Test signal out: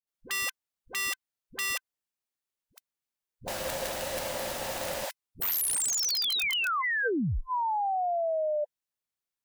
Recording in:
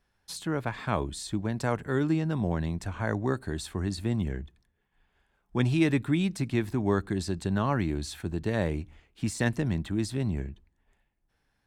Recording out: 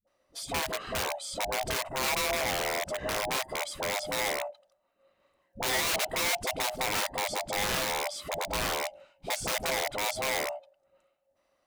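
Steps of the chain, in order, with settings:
neighbouring bands swapped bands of 500 Hz
wrap-around overflow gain 24 dB
all-pass dispersion highs, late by 72 ms, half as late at 400 Hz

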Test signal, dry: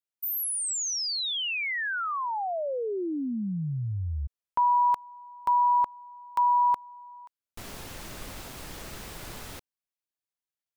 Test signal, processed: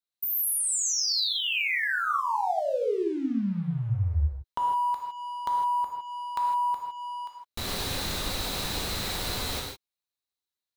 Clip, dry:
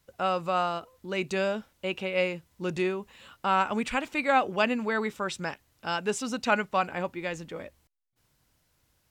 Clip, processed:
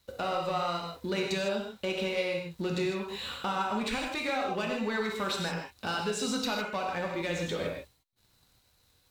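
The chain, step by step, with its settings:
parametric band 4,000 Hz +13 dB 0.26 octaves
downward compressor 8 to 1, threshold −37 dBFS
leveller curve on the samples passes 2
reverb whose tail is shaped and stops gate 180 ms flat, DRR −0.5 dB

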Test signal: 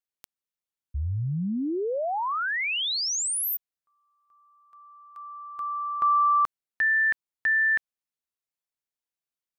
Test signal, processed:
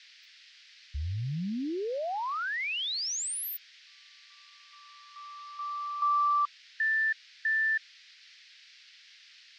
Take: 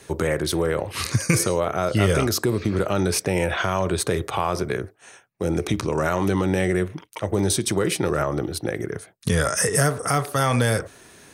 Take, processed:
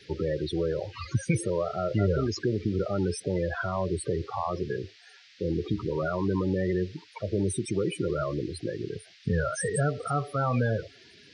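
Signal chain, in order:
spectral peaks only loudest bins 16
noise in a band 1,700–5,200 Hz −51 dBFS
level −5 dB

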